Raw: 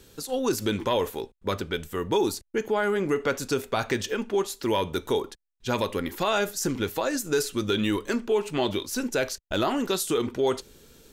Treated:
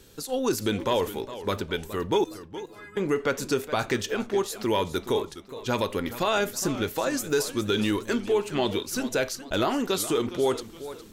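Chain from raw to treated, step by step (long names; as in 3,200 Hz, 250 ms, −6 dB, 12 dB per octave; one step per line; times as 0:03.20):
0:02.24–0:02.97: stiff-string resonator 150 Hz, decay 0.64 s, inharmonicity 0.03
feedback echo with a swinging delay time 415 ms, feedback 39%, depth 142 cents, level −14 dB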